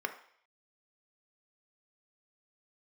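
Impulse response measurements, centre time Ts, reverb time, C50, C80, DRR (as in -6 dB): 10 ms, 0.60 s, 11.5 dB, 15.0 dB, 6.0 dB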